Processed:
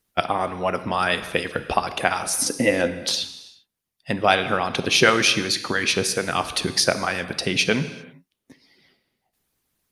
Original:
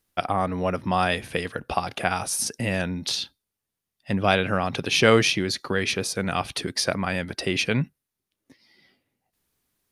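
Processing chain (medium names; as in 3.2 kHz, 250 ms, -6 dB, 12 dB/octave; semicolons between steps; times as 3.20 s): harmonic-percussive split harmonic -15 dB; 2.34–2.91 s: small resonant body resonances 290/510/2000 Hz, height 13 dB; gated-style reverb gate 420 ms falling, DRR 10 dB; trim +5.5 dB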